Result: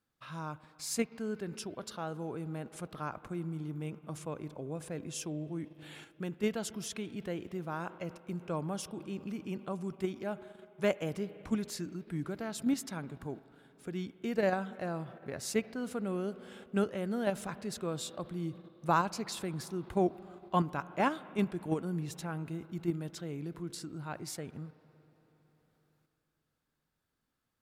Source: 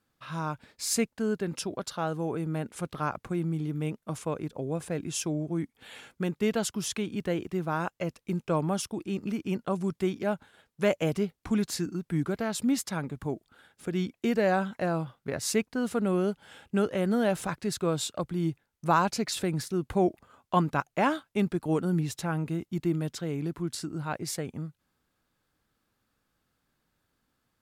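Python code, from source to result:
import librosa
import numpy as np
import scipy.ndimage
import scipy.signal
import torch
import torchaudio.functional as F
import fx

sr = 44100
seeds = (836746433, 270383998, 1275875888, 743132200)

p1 = fx.rev_spring(x, sr, rt60_s=3.8, pass_ms=(40, 46, 56), chirp_ms=75, drr_db=16.5)
p2 = fx.level_steps(p1, sr, step_db=24)
p3 = p1 + (p2 * 10.0 ** (0.0 / 20.0))
y = p3 * 10.0 ** (-9.0 / 20.0)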